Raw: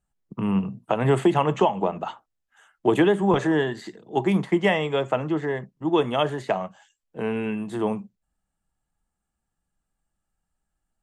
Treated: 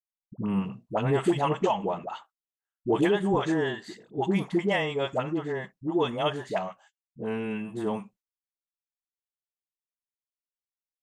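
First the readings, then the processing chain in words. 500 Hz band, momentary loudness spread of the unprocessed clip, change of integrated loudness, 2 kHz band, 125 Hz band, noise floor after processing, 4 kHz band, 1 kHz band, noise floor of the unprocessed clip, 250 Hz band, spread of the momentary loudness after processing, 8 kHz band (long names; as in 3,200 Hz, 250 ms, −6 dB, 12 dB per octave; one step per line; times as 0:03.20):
−4.5 dB, 11 LU, −4.5 dB, −4.0 dB, −4.5 dB, below −85 dBFS, −3.0 dB, −4.5 dB, −81 dBFS, −4.5 dB, 11 LU, can't be measured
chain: noise gate −47 dBFS, range −36 dB
all-pass dispersion highs, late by 72 ms, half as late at 550 Hz
dynamic equaliser 5,100 Hz, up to +4 dB, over −46 dBFS, Q 1.2
level −4.5 dB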